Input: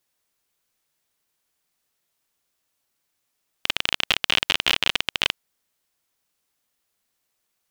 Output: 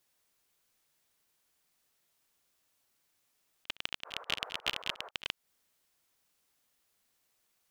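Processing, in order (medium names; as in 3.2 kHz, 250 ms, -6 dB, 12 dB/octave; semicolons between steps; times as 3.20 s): 4.04–5.09 s: band noise 440–1400 Hz -40 dBFS; slow attack 284 ms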